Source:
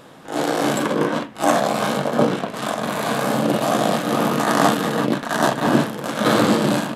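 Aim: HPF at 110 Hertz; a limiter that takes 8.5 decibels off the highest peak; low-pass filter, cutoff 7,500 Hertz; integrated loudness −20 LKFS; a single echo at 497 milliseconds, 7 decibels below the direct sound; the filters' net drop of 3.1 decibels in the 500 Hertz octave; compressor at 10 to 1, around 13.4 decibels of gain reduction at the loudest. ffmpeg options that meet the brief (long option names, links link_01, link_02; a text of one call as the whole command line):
ffmpeg -i in.wav -af "highpass=110,lowpass=7500,equalizer=frequency=500:width_type=o:gain=-4,acompressor=threshold=-26dB:ratio=10,alimiter=limit=-23dB:level=0:latency=1,aecho=1:1:497:0.447,volume=12.5dB" out.wav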